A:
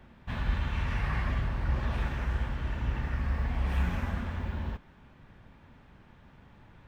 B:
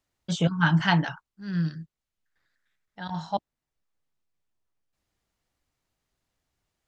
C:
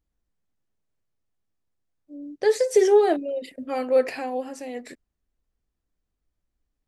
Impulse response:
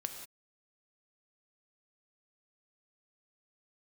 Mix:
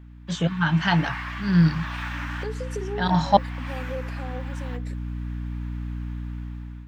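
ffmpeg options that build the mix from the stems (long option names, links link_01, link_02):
-filter_complex "[0:a]highpass=frequency=970:width=0.5412,highpass=frequency=970:width=1.3066,volume=-3.5dB[link_01];[1:a]alimiter=limit=-11.5dB:level=0:latency=1:release=395,aeval=exprs='val(0)+0.00794*(sin(2*PI*60*n/s)+sin(2*PI*2*60*n/s)/2+sin(2*PI*3*60*n/s)/3+sin(2*PI*4*60*n/s)/4+sin(2*PI*5*60*n/s)/5)':channel_layout=same,volume=-1dB[link_02];[2:a]acompressor=threshold=-28dB:ratio=2.5,volume=-19.5dB,asplit=2[link_03][link_04];[link_04]apad=whole_len=303060[link_05];[link_01][link_05]sidechaincompress=threshold=-52dB:ratio=10:attack=37:release=1260[link_06];[link_06][link_02][link_03]amix=inputs=3:normalize=0,dynaudnorm=framelen=400:gausssize=5:maxgain=14dB,equalizer=frequency=9600:width=2.3:gain=-2.5"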